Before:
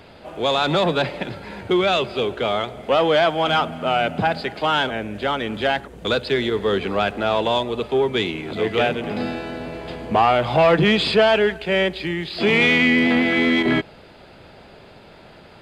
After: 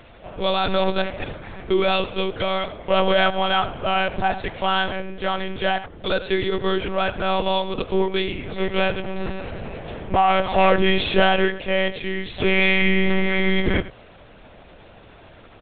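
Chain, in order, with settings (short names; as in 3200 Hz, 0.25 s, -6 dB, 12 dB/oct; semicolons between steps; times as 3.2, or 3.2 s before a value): on a send: echo 88 ms -14.5 dB; on the sum: monotone LPC vocoder at 8 kHz 190 Hz; gain -1 dB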